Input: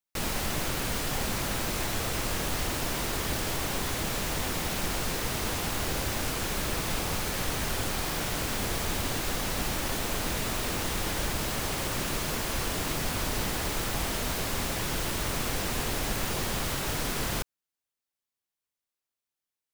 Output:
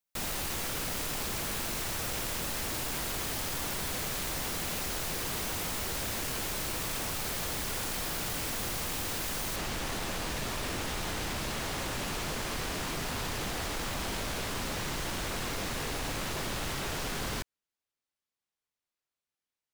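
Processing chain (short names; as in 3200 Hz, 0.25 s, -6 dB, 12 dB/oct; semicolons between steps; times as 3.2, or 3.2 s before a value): high shelf 9000 Hz +2.5 dB, from 9.56 s -10 dB; wavefolder -29.5 dBFS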